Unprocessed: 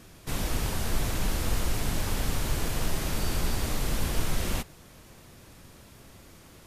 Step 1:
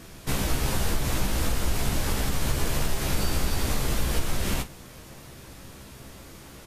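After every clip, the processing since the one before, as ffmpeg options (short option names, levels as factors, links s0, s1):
-af "acompressor=threshold=0.0501:ratio=6,aecho=1:1:15|50:0.531|0.211,volume=1.78"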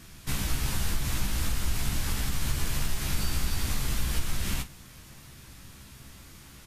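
-af "equalizer=f=510:w=0.81:g=-10.5,volume=0.794"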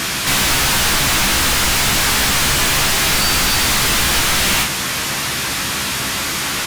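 -filter_complex "[0:a]asplit=2[s0][s1];[s1]highpass=f=720:p=1,volume=63.1,asoftclip=type=tanh:threshold=0.2[s2];[s0][s2]amix=inputs=2:normalize=0,lowpass=f=5800:p=1,volume=0.501,volume=2.24"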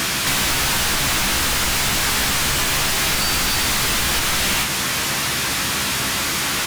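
-af "acrusher=bits=3:mode=log:mix=0:aa=0.000001,acompressor=threshold=0.141:ratio=6"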